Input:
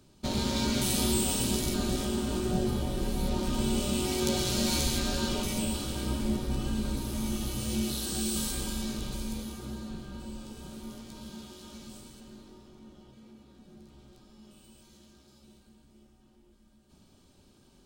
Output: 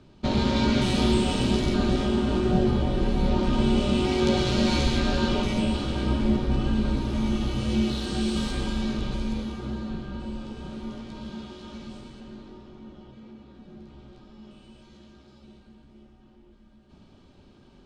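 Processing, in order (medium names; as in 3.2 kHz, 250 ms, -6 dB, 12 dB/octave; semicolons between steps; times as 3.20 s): low-pass 3.2 kHz 12 dB/octave; trim +7 dB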